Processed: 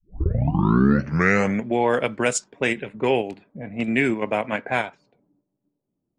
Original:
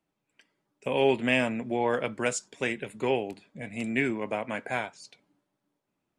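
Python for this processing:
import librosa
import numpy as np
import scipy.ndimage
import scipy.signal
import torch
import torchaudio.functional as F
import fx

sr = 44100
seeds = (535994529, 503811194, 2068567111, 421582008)

p1 = fx.tape_start_head(x, sr, length_s=1.71)
p2 = fx.env_lowpass(p1, sr, base_hz=400.0, full_db=-24.5)
p3 = fx.level_steps(p2, sr, step_db=16)
p4 = p2 + (p3 * 10.0 ** (1.5 / 20.0))
y = p4 * 10.0 ** (2.5 / 20.0)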